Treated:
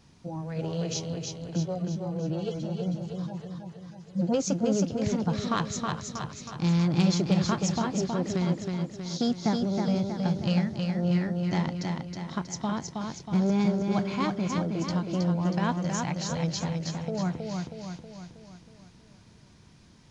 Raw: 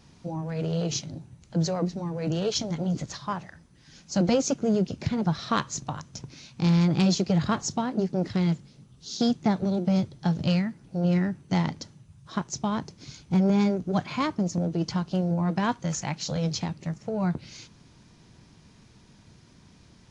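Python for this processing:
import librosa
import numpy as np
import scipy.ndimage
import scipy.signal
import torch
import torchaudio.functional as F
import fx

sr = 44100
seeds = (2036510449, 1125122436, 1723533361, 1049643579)

y = fx.hpss_only(x, sr, part='harmonic', at=(1.6, 4.34))
y = fx.echo_feedback(y, sr, ms=319, feedback_pct=53, wet_db=-4)
y = y * 10.0 ** (-3.0 / 20.0)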